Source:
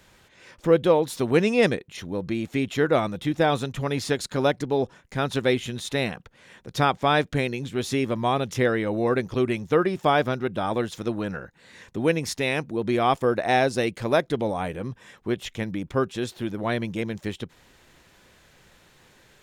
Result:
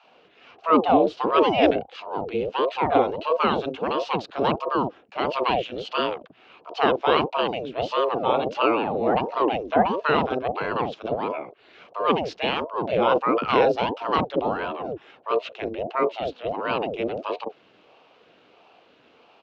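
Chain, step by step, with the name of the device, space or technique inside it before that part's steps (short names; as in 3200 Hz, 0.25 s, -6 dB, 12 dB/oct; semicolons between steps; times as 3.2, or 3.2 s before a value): voice changer toy (ring modulator with a swept carrier 470 Hz, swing 75%, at 1.5 Hz; speaker cabinet 420–5000 Hz, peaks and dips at 470 Hz +5 dB, 710 Hz +4 dB, 1900 Hz -7 dB, 2800 Hz +7 dB); RIAA curve playback; bands offset in time highs, lows 40 ms, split 730 Hz; gain +4.5 dB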